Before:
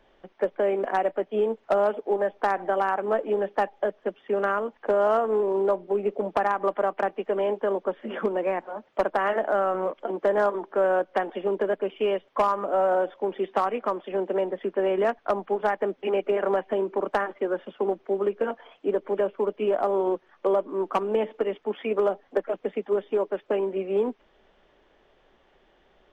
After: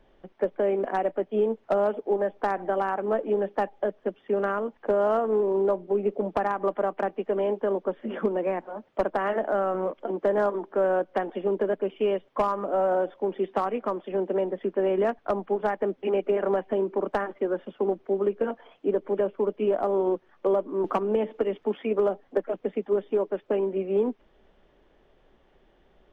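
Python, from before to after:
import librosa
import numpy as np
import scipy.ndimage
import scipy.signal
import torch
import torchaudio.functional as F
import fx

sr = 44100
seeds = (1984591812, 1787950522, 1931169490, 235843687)

y = fx.low_shelf(x, sr, hz=400.0, db=9.5)
y = fx.band_squash(y, sr, depth_pct=70, at=(20.84, 21.78))
y = F.gain(torch.from_numpy(y), -4.5).numpy()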